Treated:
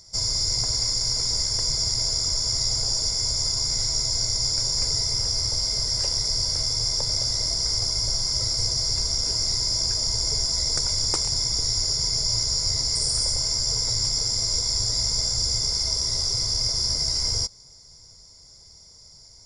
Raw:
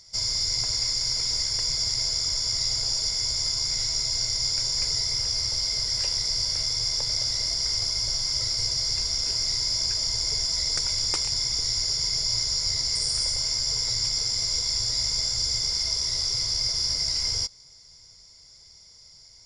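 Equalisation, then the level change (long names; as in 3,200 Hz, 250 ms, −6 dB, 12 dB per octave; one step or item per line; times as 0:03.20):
parametric band 2,700 Hz −12.5 dB 1.6 octaves
+6.5 dB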